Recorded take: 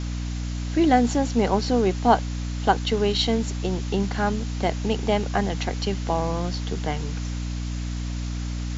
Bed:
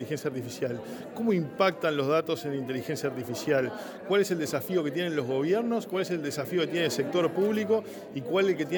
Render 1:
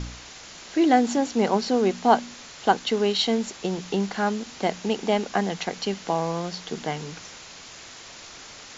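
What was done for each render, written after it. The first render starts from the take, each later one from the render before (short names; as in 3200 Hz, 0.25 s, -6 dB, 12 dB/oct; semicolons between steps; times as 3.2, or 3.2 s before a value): de-hum 60 Hz, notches 5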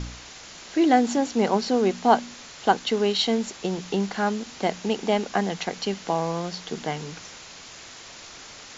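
nothing audible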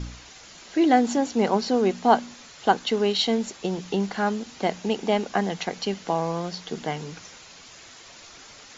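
denoiser 6 dB, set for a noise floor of -44 dBFS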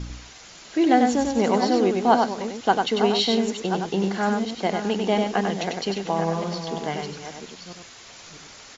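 reverse delay 0.644 s, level -9 dB; echo 97 ms -4.5 dB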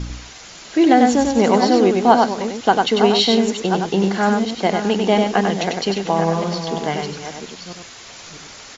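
gain +6 dB; limiter -1 dBFS, peak gain reduction 3 dB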